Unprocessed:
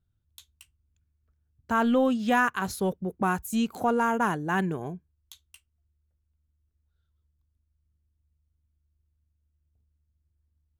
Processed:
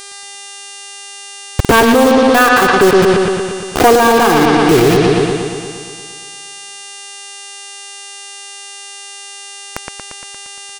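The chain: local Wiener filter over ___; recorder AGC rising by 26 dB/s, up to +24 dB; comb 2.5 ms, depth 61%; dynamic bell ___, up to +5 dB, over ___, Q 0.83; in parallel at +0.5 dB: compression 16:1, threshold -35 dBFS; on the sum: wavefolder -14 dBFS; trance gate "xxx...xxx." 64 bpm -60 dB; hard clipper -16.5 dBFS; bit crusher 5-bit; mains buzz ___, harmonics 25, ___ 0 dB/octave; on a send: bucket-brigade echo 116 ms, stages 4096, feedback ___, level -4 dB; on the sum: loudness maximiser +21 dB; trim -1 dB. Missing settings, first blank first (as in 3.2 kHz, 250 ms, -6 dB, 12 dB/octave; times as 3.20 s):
41 samples, 380 Hz, -37 dBFS, 400 Hz, -53 dBFS, 66%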